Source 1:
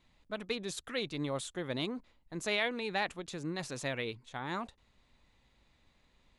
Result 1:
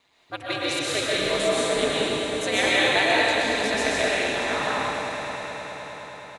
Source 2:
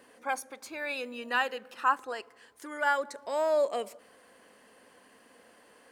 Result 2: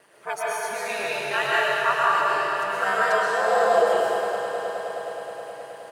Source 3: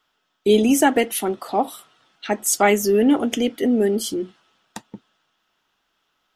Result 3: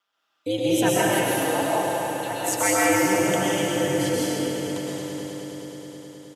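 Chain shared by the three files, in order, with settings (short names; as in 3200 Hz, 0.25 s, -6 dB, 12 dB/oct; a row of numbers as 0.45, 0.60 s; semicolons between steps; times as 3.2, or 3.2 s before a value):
HPF 360 Hz 12 dB/oct; comb 5.4 ms, depth 33%; swelling echo 0.105 s, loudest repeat 5, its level -16 dB; ring modulator 100 Hz; digital reverb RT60 2.7 s, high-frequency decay 0.95×, pre-delay 85 ms, DRR -7 dB; match loudness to -23 LUFS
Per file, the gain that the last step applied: +9.5, +4.0, -5.5 dB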